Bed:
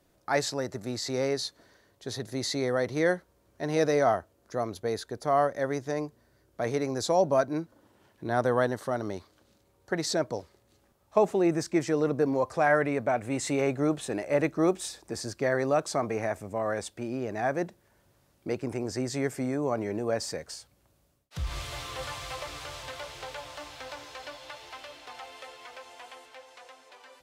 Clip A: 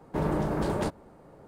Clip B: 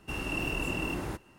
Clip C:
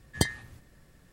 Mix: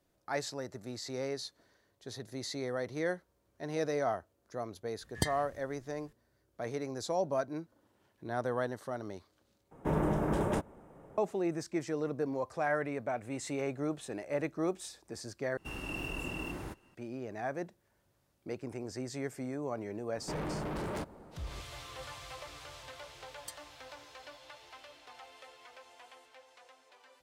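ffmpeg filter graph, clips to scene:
-filter_complex "[3:a]asplit=2[a][b];[1:a]asplit=2[c][d];[0:a]volume=-8.5dB[e];[c]equalizer=f=4.4k:w=4.5:g=-14[f];[d]asoftclip=type=tanh:threshold=-34.5dB[g];[b]aderivative[h];[e]asplit=3[i][j][k];[i]atrim=end=9.714[l];[f]atrim=end=1.47,asetpts=PTS-STARTPTS,volume=-2.5dB[m];[j]atrim=start=11.176:end=15.574[n];[2:a]atrim=end=1.38,asetpts=PTS-STARTPTS,volume=-6.5dB[o];[k]atrim=start=16.946[p];[a]atrim=end=1.12,asetpts=PTS-STARTPTS,volume=-6.5dB,afade=t=in:d=0.004:c=hsin,afade=t=out:st=1.116:d=0.004:c=hsin,adelay=220941S[q];[g]atrim=end=1.47,asetpts=PTS-STARTPTS,volume=-0.5dB,afade=t=in:d=0.004:c=hsin,afade=t=out:st=1.466:d=0.004:c=hsin,adelay=20140[r];[h]atrim=end=1.12,asetpts=PTS-STARTPTS,volume=-14dB,afade=t=in:d=0.004:c=hsin,afade=t=out:st=1.116:d=0.004:c=hsin,adelay=23270[s];[l][m]acrossfade=d=0.004:c1=hsin:c2=hsin[t];[t][n]acrossfade=d=0.004:c1=hsin:c2=hsin[u];[u][o]acrossfade=d=0.004:c1=hsin:c2=hsin[v];[v][p]acrossfade=d=0.004:c1=hsin:c2=hsin[w];[w][q][r][s]amix=inputs=4:normalize=0"

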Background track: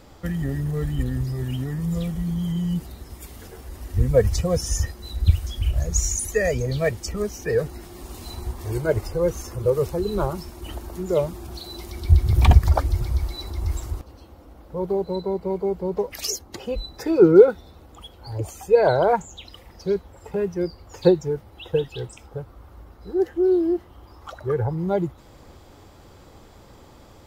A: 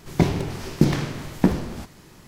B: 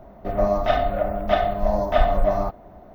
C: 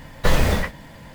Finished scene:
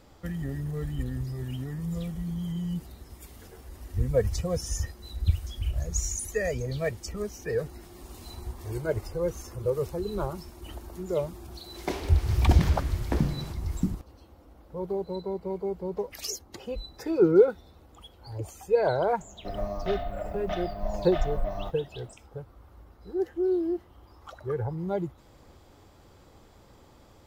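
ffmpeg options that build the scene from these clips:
-filter_complex "[0:a]volume=-7dB[a];[1:a]acrossover=split=270[b][c];[b]adelay=710[d];[d][c]amix=inputs=2:normalize=0[e];[2:a]acrossover=split=150|2600[f][g][h];[g]acompressor=threshold=-27dB:ratio=2.5:attack=33:release=487:knee=2.83:detection=peak[i];[f][i][h]amix=inputs=3:normalize=0[j];[e]atrim=end=2.27,asetpts=PTS-STARTPTS,volume=-6.5dB,afade=t=in:d=0.004:c=hsin,afade=t=out:st=2.266:d=0.004:c=hsin,adelay=11680[k];[j]atrim=end=2.94,asetpts=PTS-STARTPTS,volume=-8dB,afade=t=in:d=0.004:c=hsin,afade=t=out:st=2.936:d=0.004:c=hsin,adelay=19200[l];[a][k][l]amix=inputs=3:normalize=0"

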